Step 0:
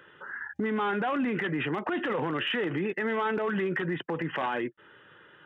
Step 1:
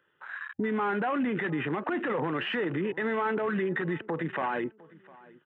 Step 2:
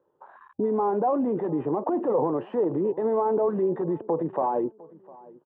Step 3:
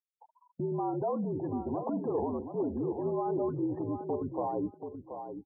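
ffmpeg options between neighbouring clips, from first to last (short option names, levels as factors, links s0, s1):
-filter_complex "[0:a]afwtdn=0.0126,asplit=2[s0][s1];[s1]adelay=705,lowpass=f=2200:p=1,volume=0.0794,asplit=2[s2][s3];[s3]adelay=705,lowpass=f=2200:p=1,volume=0.33[s4];[s0][s2][s4]amix=inputs=3:normalize=0,acrossover=split=3200[s5][s6];[s6]acompressor=threshold=0.00158:ratio=4:attack=1:release=60[s7];[s5][s7]amix=inputs=2:normalize=0"
-af "firequalizer=gain_entry='entry(190,0);entry(320,5);entry(510,9);entry(990,5);entry(1400,-16);entry(2000,-24);entry(6700,-17)':delay=0.05:min_phase=1"
-af "afreqshift=-58,afftfilt=real='re*gte(hypot(re,im),0.02)':imag='im*gte(hypot(re,im),0.02)':win_size=1024:overlap=0.75,aecho=1:1:730|1460:0.376|0.0601,volume=0.398"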